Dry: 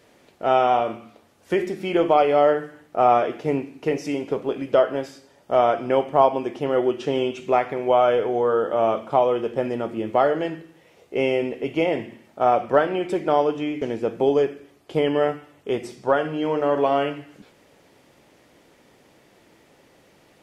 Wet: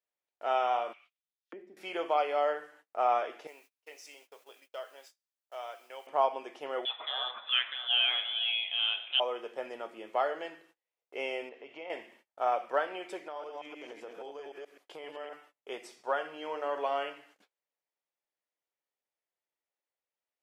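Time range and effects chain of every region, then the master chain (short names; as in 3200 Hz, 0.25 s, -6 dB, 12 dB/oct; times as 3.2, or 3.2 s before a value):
0.93–1.77 high shelf 2200 Hz +6 dB + auto-wah 230–4200 Hz, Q 2.3, down, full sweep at -22 dBFS
3.47–6.07 HPF 690 Hz + bell 1100 Hz -12 dB 2.8 oct + requantised 10-bit, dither triangular
6.85–9.2 reverse delay 0.341 s, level -13.5 dB + tilt +4.5 dB/oct + inverted band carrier 3800 Hz
11.49–11.9 compressor 2.5:1, threshold -29 dBFS + air absorption 130 m
13.23–15.33 reverse delay 0.129 s, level -2 dB + compressor 12:1, threshold -24 dBFS
whole clip: gate -45 dBFS, range -30 dB; HPF 670 Hz 12 dB/oct; gain -8 dB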